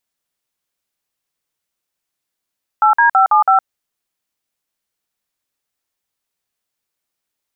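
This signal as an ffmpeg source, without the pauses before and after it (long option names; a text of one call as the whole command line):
ffmpeg -f lavfi -i "aevalsrc='0.299*clip(min(mod(t,0.164),0.113-mod(t,0.164))/0.002,0,1)*(eq(floor(t/0.164),0)*(sin(2*PI*852*mod(t,0.164))+sin(2*PI*1336*mod(t,0.164)))+eq(floor(t/0.164),1)*(sin(2*PI*941*mod(t,0.164))+sin(2*PI*1633*mod(t,0.164)))+eq(floor(t/0.164),2)*(sin(2*PI*770*mod(t,0.164))+sin(2*PI*1336*mod(t,0.164)))+eq(floor(t/0.164),3)*(sin(2*PI*852*mod(t,0.164))+sin(2*PI*1209*mod(t,0.164)))+eq(floor(t/0.164),4)*(sin(2*PI*770*mod(t,0.164))+sin(2*PI*1336*mod(t,0.164))))':duration=0.82:sample_rate=44100" out.wav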